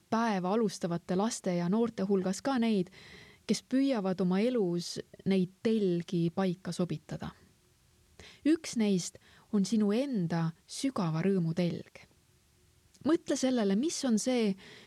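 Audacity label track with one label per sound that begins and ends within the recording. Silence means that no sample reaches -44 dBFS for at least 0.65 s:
8.200000	12.040000	sound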